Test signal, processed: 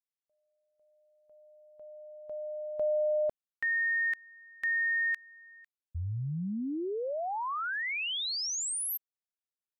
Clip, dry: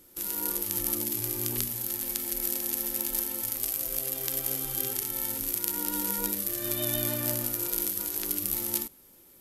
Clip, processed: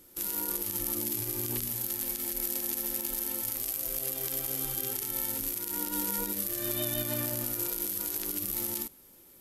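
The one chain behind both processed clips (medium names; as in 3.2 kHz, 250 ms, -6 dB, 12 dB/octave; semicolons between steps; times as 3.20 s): peak limiter -16.5 dBFS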